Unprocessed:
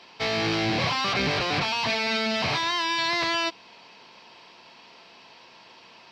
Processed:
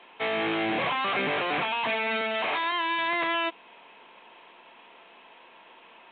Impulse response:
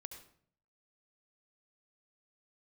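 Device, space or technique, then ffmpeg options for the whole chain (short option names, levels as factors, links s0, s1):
telephone: -filter_complex "[0:a]asettb=1/sr,asplit=3[s0][s1][s2];[s0]atrim=end=2.214[s3];[s1]atrim=start=2.21:end=2.72,asetpts=PTS-STARTPTS,afade=t=in:d=0.004:c=qsin,afade=t=out:st=0.506:d=0.004:c=qsin,highpass=290[s4];[s2]atrim=start=2.716[s5];[s3][s4]acrossfade=d=0.004:c1=hsin:c2=qsin[s6];[s6][s5]acrossfade=d=0.004:c1=qsin:c2=hsin,highpass=270,lowpass=3100" -ar 8000 -c:a pcm_mulaw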